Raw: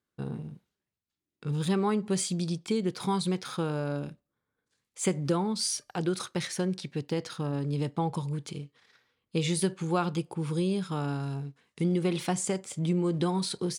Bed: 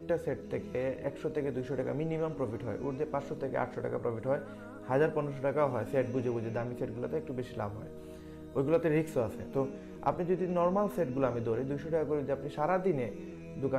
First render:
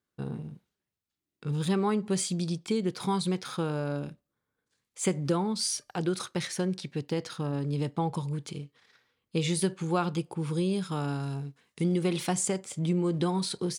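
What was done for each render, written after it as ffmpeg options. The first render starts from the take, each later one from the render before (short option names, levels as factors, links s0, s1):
-filter_complex "[0:a]asettb=1/sr,asplit=3[s0][s1][s2];[s0]atrim=end=10.734[s3];[s1]atrim=start=10.73:end=12.48,asetpts=PTS-STARTPTS,afade=t=in:d=0.004:c=qsin,afade=t=out:st=1.746:d=0.004:c=qsin,highshelf=f=5000:g=4.5[s4];[s2]atrim=start=12.476[s5];[s3][s4]acrossfade=d=0.004:c1=hsin:c2=qsin[s6];[s6][s5]acrossfade=d=0.004:c1=qsin:c2=hsin"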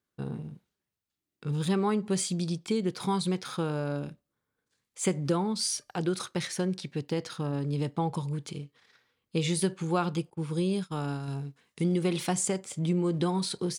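-filter_complex "[0:a]asettb=1/sr,asplit=3[s0][s1][s2];[s0]atrim=end=10.304[s3];[s1]atrim=start=10.3:end=11.28,asetpts=PTS-STARTPTS,afade=t=in:d=0.004:c=qsin,afade=t=out:st=0.976:d=0.004:c=qsin,agate=range=0.0224:threshold=0.0316:ratio=3:release=100:detection=peak[s4];[s2]atrim=start=11.276[s5];[s3][s4]acrossfade=d=0.004:c1=hsin:c2=qsin[s6];[s6][s5]acrossfade=d=0.004:c1=qsin:c2=hsin"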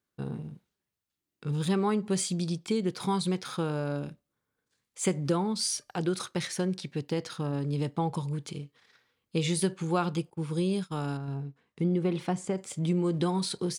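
-filter_complex "[0:a]asettb=1/sr,asplit=3[s0][s1][s2];[s0]atrim=end=11.174[s3];[s1]atrim=start=11.17:end=12.58,asetpts=PTS-STARTPTS,afade=t=in:d=0.004:c=qsin,afade=t=out:st=1.406:d=0.004:c=qsin,lowpass=f=1300:p=1[s4];[s2]atrim=start=12.576[s5];[s3][s4]acrossfade=d=0.004:c1=hsin:c2=qsin[s6];[s6][s5]acrossfade=d=0.004:c1=qsin:c2=hsin"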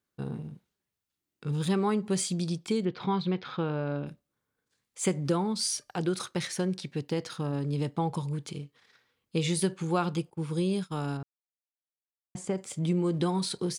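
-filter_complex "[0:a]asettb=1/sr,asplit=3[s0][s1][s2];[s0]atrim=end=2.854[s3];[s1]atrim=start=2.85:end=4.07,asetpts=PTS-STARTPTS,afade=t=in:d=0.004:c=qsin,afade=t=out:st=1.216:d=0.004:c=qsin,lowpass=f=3700:w=0.5412,lowpass=f=3700:w=1.3066[s4];[s2]atrim=start=4.066[s5];[s3][s4]acrossfade=d=0.004:c1=hsin:c2=qsin[s6];[s6][s5]acrossfade=d=0.004:c1=qsin:c2=hsin,asplit=3[s7][s8][s9];[s7]atrim=end=11.23,asetpts=PTS-STARTPTS,afade=t=out:st=11.226:d=0.004:c=hsin[s10];[s8]atrim=start=11.23:end=12.35,asetpts=PTS-STARTPTS,volume=0[s11];[s9]atrim=start=12.35,asetpts=PTS-STARTPTS,afade=t=in:d=0.004:c=hsin[s12];[s10][s11][s12]concat=n=3:v=0:a=1"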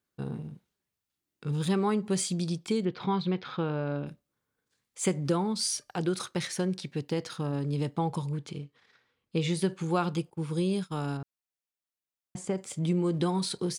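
-filter_complex "[0:a]asettb=1/sr,asplit=3[s0][s1][s2];[s0]atrim=end=8.314[s3];[s1]atrim=start=8.31:end=9.69,asetpts=PTS-STARTPTS,afade=t=in:d=0.004:c=qsin,afade=t=out:st=1.376:d=0.004:c=qsin,highshelf=f=6700:g=-11[s4];[s2]atrim=start=9.686[s5];[s3][s4]acrossfade=d=0.004:c1=hsin:c2=qsin[s6];[s6][s5]acrossfade=d=0.004:c1=qsin:c2=hsin"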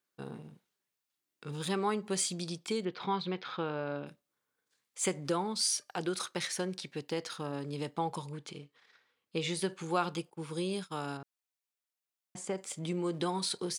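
-af "highpass=f=500:p=1"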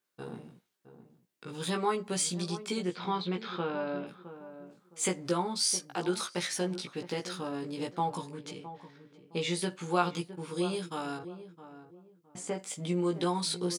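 -filter_complex "[0:a]asplit=2[s0][s1];[s1]adelay=17,volume=0.708[s2];[s0][s2]amix=inputs=2:normalize=0,asplit=2[s3][s4];[s4]adelay=664,lowpass=f=990:p=1,volume=0.251,asplit=2[s5][s6];[s6]adelay=664,lowpass=f=990:p=1,volume=0.29,asplit=2[s7][s8];[s8]adelay=664,lowpass=f=990:p=1,volume=0.29[s9];[s3][s5][s7][s9]amix=inputs=4:normalize=0"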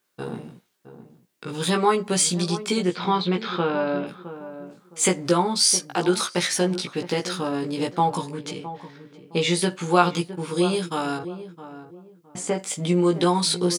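-af "volume=3.16"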